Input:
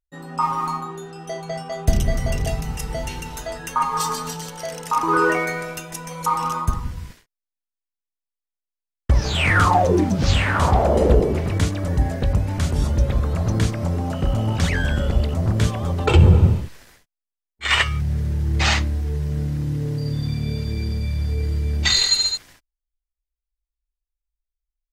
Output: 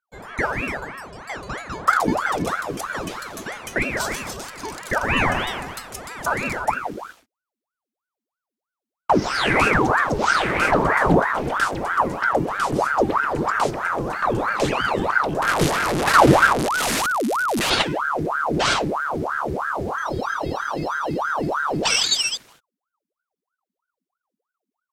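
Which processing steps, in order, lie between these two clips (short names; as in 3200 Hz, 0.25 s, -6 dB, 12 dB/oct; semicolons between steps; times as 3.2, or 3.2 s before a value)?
15.42–17.7 delta modulation 64 kbps, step -13.5 dBFS; ring modulator with a swept carrier 860 Hz, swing 75%, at 3.1 Hz; gain +1 dB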